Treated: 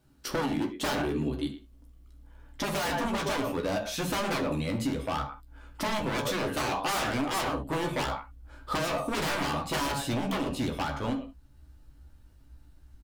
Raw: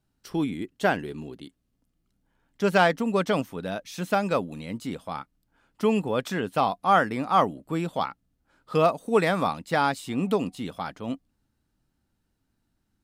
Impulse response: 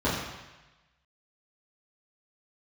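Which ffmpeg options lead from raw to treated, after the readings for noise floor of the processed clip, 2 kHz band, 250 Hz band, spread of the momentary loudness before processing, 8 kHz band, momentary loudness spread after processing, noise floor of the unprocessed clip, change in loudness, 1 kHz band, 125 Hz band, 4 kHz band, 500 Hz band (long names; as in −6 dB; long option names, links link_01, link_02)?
−56 dBFS, −3.0 dB, −3.0 dB, 14 LU, +7.0 dB, 6 LU, −76 dBFS, −4.5 dB, −6.0 dB, −1.5 dB, +2.5 dB, −6.5 dB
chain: -filter_complex "[0:a]asubboost=boost=8:cutoff=67,asplit=2[link_01][link_02];[link_02]adelay=110,highpass=300,lowpass=3400,asoftclip=type=hard:threshold=-17dB,volume=-13dB[link_03];[link_01][link_03]amix=inputs=2:normalize=0,aeval=exprs='0.398*(cos(1*acos(clip(val(0)/0.398,-1,1)))-cos(1*PI/2))+0.1*(cos(5*acos(clip(val(0)/0.398,-1,1)))-cos(5*PI/2))':channel_layout=same,aeval=exprs='0.075*(abs(mod(val(0)/0.075+3,4)-2)-1)':channel_layout=same,asplit=2[link_04][link_05];[link_05]adelay=14,volume=-7dB[link_06];[link_04][link_06]amix=inputs=2:normalize=0,asplit=2[link_07][link_08];[1:a]atrim=start_sample=2205,atrim=end_sample=3528,highshelf=frequency=8200:gain=8[link_09];[link_08][link_09]afir=irnorm=-1:irlink=0,volume=-15dB[link_10];[link_07][link_10]amix=inputs=2:normalize=0,alimiter=limit=-20.5dB:level=0:latency=1:release=476"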